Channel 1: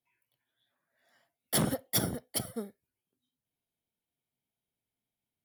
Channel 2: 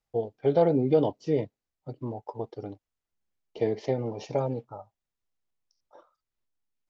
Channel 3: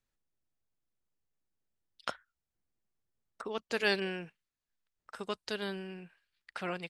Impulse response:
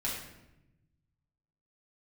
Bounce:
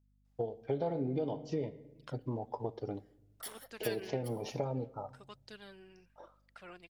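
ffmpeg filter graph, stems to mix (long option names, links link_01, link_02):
-filter_complex "[0:a]highpass=930,alimiter=limit=-21.5dB:level=0:latency=1:release=399,adelay=1900,volume=-10.5dB[link_01];[1:a]adelay=250,volume=-1dB,asplit=2[link_02][link_03];[link_03]volume=-23.5dB[link_04];[2:a]aphaser=in_gain=1:out_gain=1:delay=3.2:decay=0.44:speed=1.1:type=triangular,aeval=exprs='val(0)+0.00178*(sin(2*PI*50*n/s)+sin(2*PI*2*50*n/s)/2+sin(2*PI*3*50*n/s)/3+sin(2*PI*4*50*n/s)/4+sin(2*PI*5*50*n/s)/5)':channel_layout=same,volume=-15dB[link_05];[link_01][link_02]amix=inputs=2:normalize=0,acompressor=threshold=-32dB:ratio=10,volume=0dB[link_06];[3:a]atrim=start_sample=2205[link_07];[link_04][link_07]afir=irnorm=-1:irlink=0[link_08];[link_05][link_06][link_08]amix=inputs=3:normalize=0"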